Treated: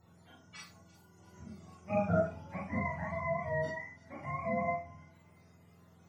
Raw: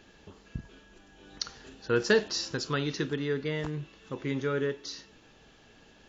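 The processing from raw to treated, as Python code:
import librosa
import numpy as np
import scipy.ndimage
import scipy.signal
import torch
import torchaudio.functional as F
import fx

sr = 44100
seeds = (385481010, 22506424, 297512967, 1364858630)

y = fx.octave_mirror(x, sr, pivot_hz=540.0)
y = fx.echo_wet_highpass(y, sr, ms=342, feedback_pct=52, hz=3200.0, wet_db=-16)
y = fx.rev_schroeder(y, sr, rt60_s=0.3, comb_ms=27, drr_db=-3.0)
y = y * librosa.db_to_amplitude(-8.0)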